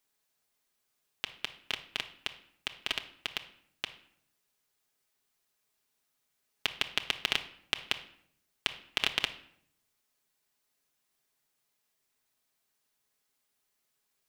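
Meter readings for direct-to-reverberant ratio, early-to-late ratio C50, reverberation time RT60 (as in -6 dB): 4.0 dB, 13.0 dB, 0.65 s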